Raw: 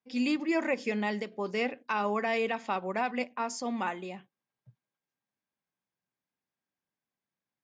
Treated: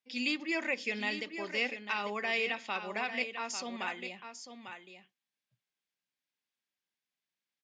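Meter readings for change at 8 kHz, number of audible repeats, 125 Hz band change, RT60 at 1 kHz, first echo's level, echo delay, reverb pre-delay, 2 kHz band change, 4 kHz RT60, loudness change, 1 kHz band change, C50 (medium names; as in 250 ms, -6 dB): +0.5 dB, 1, no reading, no reverb, -9.0 dB, 847 ms, no reverb, +2.0 dB, no reverb, -2.5 dB, -6.5 dB, no reverb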